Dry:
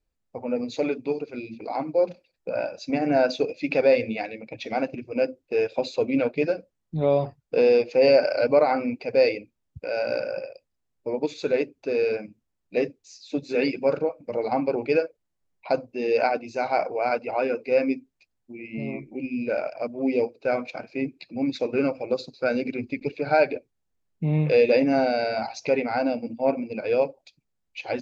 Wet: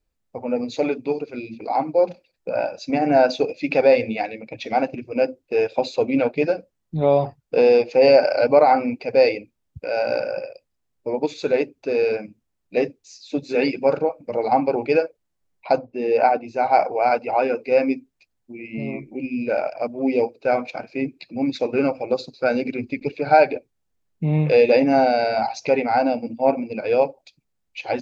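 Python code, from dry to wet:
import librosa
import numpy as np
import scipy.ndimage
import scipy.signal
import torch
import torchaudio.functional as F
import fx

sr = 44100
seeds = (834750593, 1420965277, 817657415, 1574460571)

y = fx.high_shelf(x, sr, hz=fx.line((15.77, 2900.0), (16.72, 4100.0)), db=-12.0, at=(15.77, 16.72), fade=0.02)
y = fx.dynamic_eq(y, sr, hz=810.0, q=3.4, threshold_db=-40.0, ratio=4.0, max_db=7)
y = F.gain(torch.from_numpy(y), 3.0).numpy()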